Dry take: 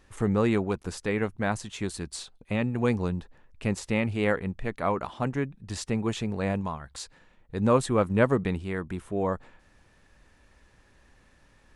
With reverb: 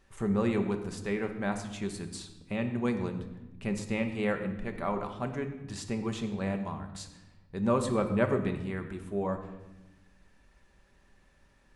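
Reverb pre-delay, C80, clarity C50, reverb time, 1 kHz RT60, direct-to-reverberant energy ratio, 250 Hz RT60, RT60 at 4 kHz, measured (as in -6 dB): 5 ms, 10.5 dB, 9.0 dB, 1.0 s, 0.90 s, 5.0 dB, 1.7 s, 0.80 s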